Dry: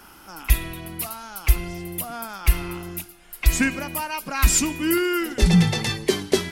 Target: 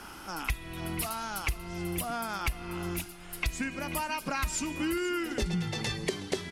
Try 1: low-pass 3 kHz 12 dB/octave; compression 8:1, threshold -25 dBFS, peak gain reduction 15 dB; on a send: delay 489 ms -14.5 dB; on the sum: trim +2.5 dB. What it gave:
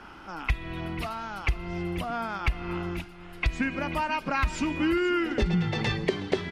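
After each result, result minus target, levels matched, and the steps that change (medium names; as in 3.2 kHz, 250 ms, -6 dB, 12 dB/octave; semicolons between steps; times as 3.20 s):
8 kHz band -14.5 dB; compression: peak gain reduction -5.5 dB
change: low-pass 10 kHz 12 dB/octave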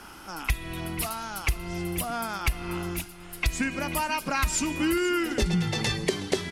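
compression: peak gain reduction -5.5 dB
change: compression 8:1, threshold -31.5 dBFS, peak gain reduction 21 dB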